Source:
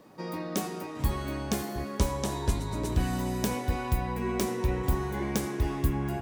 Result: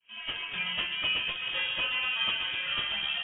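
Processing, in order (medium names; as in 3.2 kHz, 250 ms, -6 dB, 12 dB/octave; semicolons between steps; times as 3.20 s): fade-in on the opening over 0.74 s; high-pass 460 Hz 12 dB/octave; plain phase-vocoder stretch 0.52×; frequency inversion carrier 3.5 kHz; trim +9 dB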